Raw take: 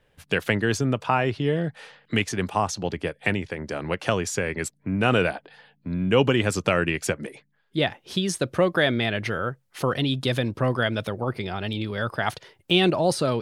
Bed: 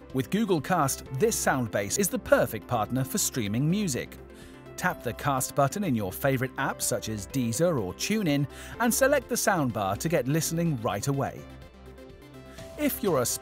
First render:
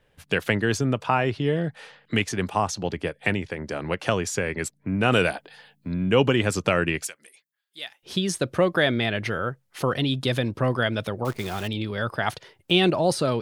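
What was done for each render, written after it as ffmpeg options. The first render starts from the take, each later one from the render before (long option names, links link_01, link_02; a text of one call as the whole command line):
ffmpeg -i in.wav -filter_complex "[0:a]asettb=1/sr,asplit=3[link_01][link_02][link_03];[link_01]atrim=end=5.124[link_04];[link_02]atrim=start=5.12:end=5.94,asetpts=PTS-STARTPTS,afade=type=in:duration=0.004:curve=qsin,afade=type=out:start_time=0.816:duration=0.004:curve=qsin,highshelf=frequency=4300:gain=11[link_05];[link_03]atrim=start=5.936[link_06];[link_04][link_05]acrossfade=duration=0.004:curve1=hsin:curve2=qsin[link_07];[link_07][link_06]acrossfade=duration=0.004:curve1=qsin:curve2=hsin,asettb=1/sr,asplit=3[link_08][link_09][link_10];[link_08]atrim=end=7.054[link_11];[link_09]atrim=start=7.05:end=8.03,asetpts=PTS-STARTPTS,afade=type=in:duration=0.004:curve=qsin,afade=type=out:start_time=0.976:duration=0.004:curve=qsin,aderivative[link_12];[link_10]atrim=start=8.026[link_13];[link_11][link_12]acrossfade=duration=0.004:curve1=hsin:curve2=qsin[link_14];[link_14][link_13]acrossfade=duration=0.004:curve1=qsin:curve2=hsin,asettb=1/sr,asplit=3[link_15][link_16][link_17];[link_15]atrim=end=11.254[link_18];[link_16]atrim=start=11.25:end=11.68,asetpts=PTS-STARTPTS,afade=type=in:duration=0.004:curve=qsin,afade=type=out:start_time=0.426:duration=0.004:curve=qsin,acrusher=bits=7:dc=4:mix=0:aa=0.000001[link_19];[link_17]atrim=start=11.676[link_20];[link_18][link_19]acrossfade=duration=0.004:curve1=hsin:curve2=qsin[link_21];[link_21][link_20]acrossfade=duration=0.004:curve1=qsin:curve2=hsin" out.wav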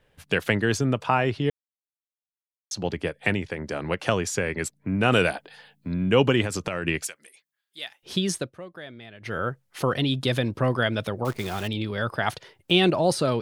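ffmpeg -i in.wav -filter_complex "[0:a]asettb=1/sr,asplit=3[link_01][link_02][link_03];[link_01]atrim=end=6.444[link_04];[link_02]atrim=start=6.44:end=6.85,asetpts=PTS-STARTPTS,afade=type=in:duration=0.004:curve=qsin,afade=type=out:start_time=0.406:duration=0.004:curve=qsin,acompressor=threshold=-23dB:ratio=12:attack=3.2:release=140:knee=1:detection=peak[link_05];[link_03]atrim=start=6.846[link_06];[link_04][link_05]acrossfade=duration=0.004:curve1=hsin:curve2=qsin[link_07];[link_07][link_06]acrossfade=duration=0.004:curve1=qsin:curve2=hsin,asplit=5[link_08][link_09][link_10][link_11][link_12];[link_08]atrim=end=1.5,asetpts=PTS-STARTPTS,afade=type=out:start_time=1.496:duration=0.004:curve=hsin[link_13];[link_09]atrim=start=1.5:end=2.71,asetpts=PTS-STARTPTS,volume=0[link_14];[link_10]atrim=start=2.71:end=8.52,asetpts=PTS-STARTPTS,afade=type=in:duration=0.004:curve=hsin,afade=type=out:start_time=5.62:duration=0.19:silence=0.105925[link_15];[link_11]atrim=start=8.52:end=9.2,asetpts=PTS-STARTPTS,volume=-19.5dB[link_16];[link_12]atrim=start=9.2,asetpts=PTS-STARTPTS,afade=type=in:duration=0.19:silence=0.105925[link_17];[link_13][link_14][link_15][link_16][link_17]concat=n=5:v=0:a=1" out.wav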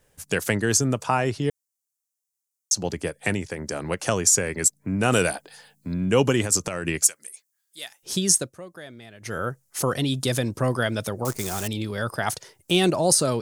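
ffmpeg -i in.wav -af "highshelf=frequency=4800:width_type=q:width=1.5:gain=12.5" out.wav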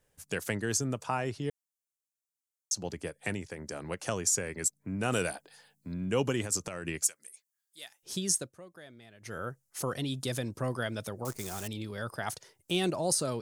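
ffmpeg -i in.wav -af "volume=-9.5dB" out.wav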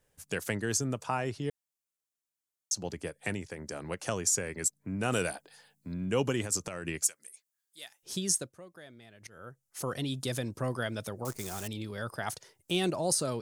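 ffmpeg -i in.wav -filter_complex "[0:a]asplit=2[link_01][link_02];[link_01]atrim=end=9.27,asetpts=PTS-STARTPTS,afade=type=out:start_time=9.266:duration=0.004:curve=hsin:silence=0.112202[link_03];[link_02]atrim=start=9.27,asetpts=PTS-STARTPTS,afade=type=in:duration=0.71:silence=0.112202[link_04];[link_03][link_04]concat=n=2:v=0:a=1" out.wav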